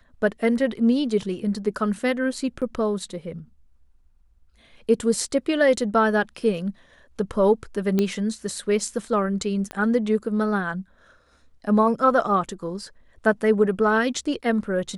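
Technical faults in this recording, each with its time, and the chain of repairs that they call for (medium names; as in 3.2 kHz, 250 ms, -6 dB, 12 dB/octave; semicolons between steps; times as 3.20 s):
2.61–2.62 s: dropout 7.3 ms
7.99 s: pop -10 dBFS
9.71 s: pop -17 dBFS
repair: de-click; interpolate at 2.61 s, 7.3 ms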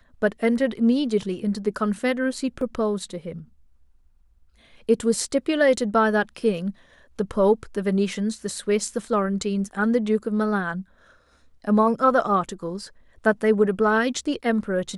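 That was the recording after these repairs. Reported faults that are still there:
7.99 s: pop
9.71 s: pop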